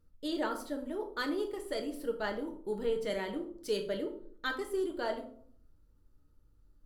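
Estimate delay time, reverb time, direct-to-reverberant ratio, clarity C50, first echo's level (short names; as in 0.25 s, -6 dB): none, 0.60 s, 3.0 dB, 10.5 dB, none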